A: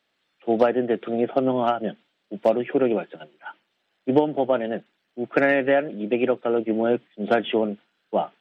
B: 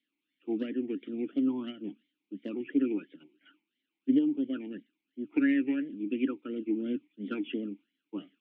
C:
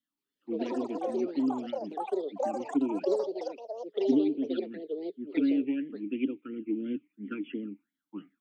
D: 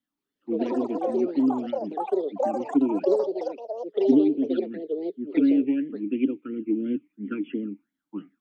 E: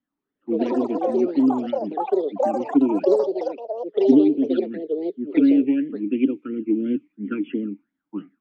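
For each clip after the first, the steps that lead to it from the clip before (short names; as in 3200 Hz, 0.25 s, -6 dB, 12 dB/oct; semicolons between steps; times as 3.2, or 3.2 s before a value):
bell 990 Hz -11 dB 1.3 oct; vowel sweep i-u 2.9 Hz; gain +3 dB
envelope phaser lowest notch 410 Hz, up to 1800 Hz, full sweep at -23 dBFS; echoes that change speed 0.176 s, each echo +6 st, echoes 3
high shelf 2000 Hz -9 dB; gain +6.5 dB
low-pass opened by the level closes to 1800 Hz, open at -19.5 dBFS; gain +4 dB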